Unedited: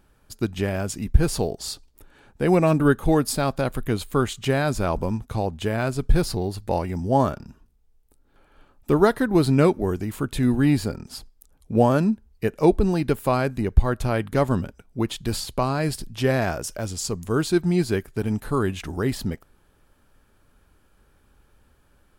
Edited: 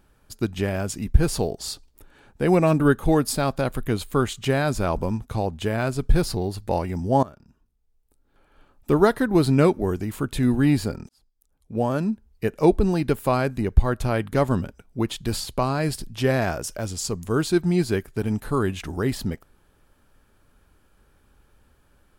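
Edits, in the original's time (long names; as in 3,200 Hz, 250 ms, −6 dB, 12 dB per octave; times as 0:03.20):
0:07.23–0:08.94: fade in, from −19 dB
0:11.09–0:12.56: fade in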